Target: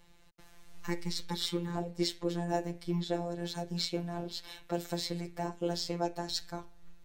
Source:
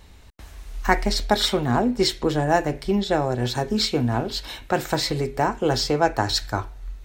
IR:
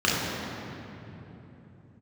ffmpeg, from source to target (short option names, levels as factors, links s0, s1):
-filter_complex "[0:a]asettb=1/sr,asplit=3[s0][s1][s2];[s0]atrim=end=0.874[s3];[s1]atrim=start=0.87:end=1.76,asetpts=PTS-STARTPTS,afade=t=in:d=0.004:c=qsin,afade=t=out:st=0.886:d=0.004:c=qsin,asuperstop=centerf=670:order=4:qfactor=2.1[s4];[s2]atrim=start=1.756[s5];[s3][s4]acrossfade=d=0.004:c1=hsin:c2=qsin[s6];[s6][s5]acrossfade=d=0.004:c1=qsin:c2=hsin,afftfilt=real='hypot(re,im)*cos(PI*b)':imag='0':win_size=1024:overlap=0.75,acrossover=split=760|2400[s7][s8][s9];[s8]acompressor=threshold=0.00708:ratio=6[s10];[s7][s10][s9]amix=inputs=3:normalize=0,volume=0.398"